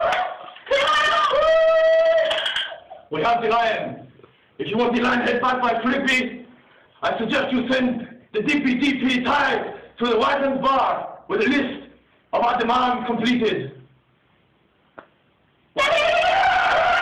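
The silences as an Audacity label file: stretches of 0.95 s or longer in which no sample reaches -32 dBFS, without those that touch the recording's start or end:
13.690000	14.980000	silence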